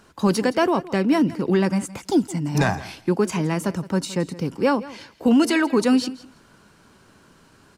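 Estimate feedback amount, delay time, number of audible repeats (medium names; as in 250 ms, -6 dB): 15%, 167 ms, 2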